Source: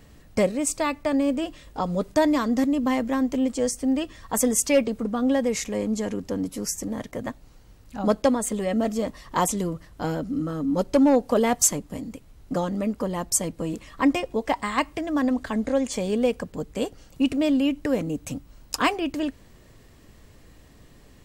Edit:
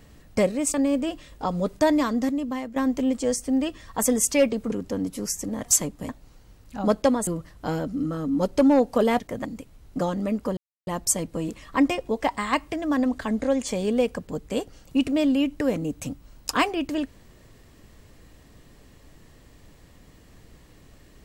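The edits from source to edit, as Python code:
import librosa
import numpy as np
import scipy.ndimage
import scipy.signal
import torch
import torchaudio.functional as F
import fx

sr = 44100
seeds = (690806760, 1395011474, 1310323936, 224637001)

y = fx.edit(x, sr, fx.cut(start_s=0.74, length_s=0.35),
    fx.fade_out_to(start_s=2.36, length_s=0.75, floor_db=-12.0),
    fx.cut(start_s=5.07, length_s=1.04),
    fx.swap(start_s=7.04, length_s=0.25, other_s=11.56, other_length_s=0.44),
    fx.cut(start_s=8.47, length_s=1.16),
    fx.insert_silence(at_s=13.12, length_s=0.3), tone=tone)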